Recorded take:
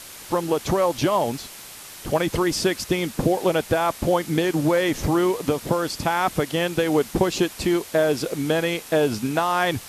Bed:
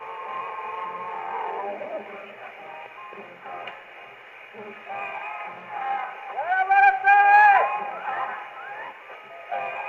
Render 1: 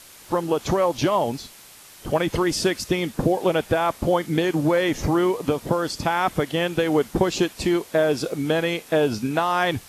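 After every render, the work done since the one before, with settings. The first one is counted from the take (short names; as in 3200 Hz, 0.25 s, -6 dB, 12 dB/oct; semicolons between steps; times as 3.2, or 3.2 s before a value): noise print and reduce 6 dB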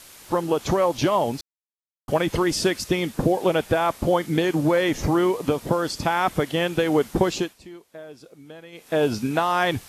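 1.41–2.08 mute; 7.28–9.04 dip -20.5 dB, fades 0.32 s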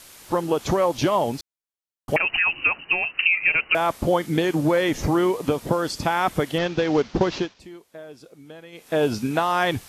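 2.16–3.75 inverted band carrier 2900 Hz; 6.58–7.6 CVSD 32 kbps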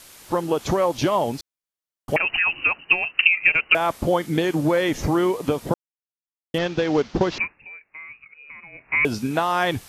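2.69–3.86 transient shaper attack +5 dB, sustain -4 dB; 5.74–6.54 mute; 7.38–9.05 inverted band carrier 2700 Hz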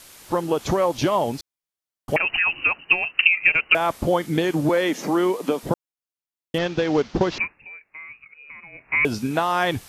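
4.69–5.63 steep high-pass 180 Hz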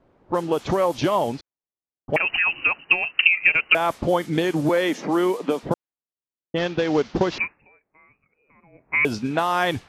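low-pass opened by the level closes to 520 Hz, open at -17 dBFS; low shelf 78 Hz -5.5 dB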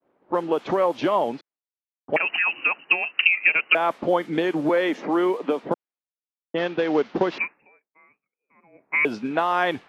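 expander -54 dBFS; three-band isolator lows -22 dB, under 190 Hz, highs -14 dB, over 3500 Hz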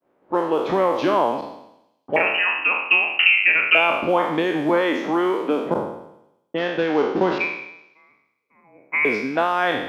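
spectral trails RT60 0.83 s; thin delay 0.105 s, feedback 61%, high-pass 5100 Hz, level -14.5 dB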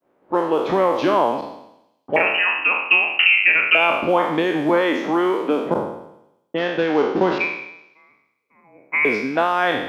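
gain +1.5 dB; limiter -3 dBFS, peak gain reduction 2.5 dB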